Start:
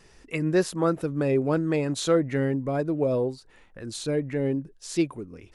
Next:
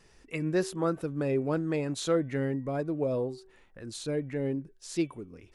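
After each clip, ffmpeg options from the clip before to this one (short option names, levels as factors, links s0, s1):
-af "bandreject=f=380.9:t=h:w=4,bandreject=f=761.8:t=h:w=4,bandreject=f=1142.7:t=h:w=4,bandreject=f=1523.6:t=h:w=4,bandreject=f=1904.5:t=h:w=4,bandreject=f=2285.4:t=h:w=4,bandreject=f=2666.3:t=h:w=4,bandreject=f=3047.2:t=h:w=4,bandreject=f=3428.1:t=h:w=4,volume=0.562"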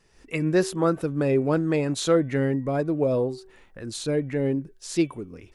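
-af "dynaudnorm=f=120:g=3:m=3.16,volume=0.668"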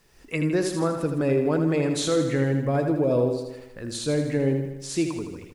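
-filter_complex "[0:a]alimiter=limit=0.15:level=0:latency=1:release=69,acrusher=bits=10:mix=0:aa=0.000001,asplit=2[s0][s1];[s1]aecho=0:1:80|160|240|320|400|480|560:0.447|0.259|0.15|0.0872|0.0505|0.0293|0.017[s2];[s0][s2]amix=inputs=2:normalize=0,volume=1.12"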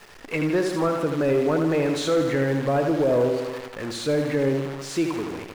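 -filter_complex "[0:a]aeval=exprs='val(0)+0.5*0.0141*sgn(val(0))':c=same,acrusher=bits=7:dc=4:mix=0:aa=0.000001,asplit=2[s0][s1];[s1]highpass=f=720:p=1,volume=4.47,asoftclip=type=tanh:threshold=0.266[s2];[s0][s2]amix=inputs=2:normalize=0,lowpass=f=1600:p=1,volume=0.501"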